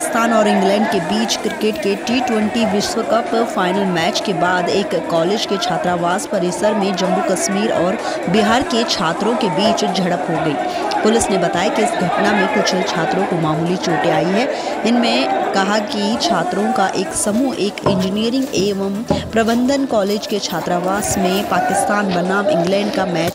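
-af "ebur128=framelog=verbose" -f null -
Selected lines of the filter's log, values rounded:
Integrated loudness:
  I:         -16.6 LUFS
  Threshold: -26.6 LUFS
Loudness range:
  LRA:         1.2 LU
  Threshold: -36.7 LUFS
  LRA low:   -17.3 LUFS
  LRA high:  -16.1 LUFS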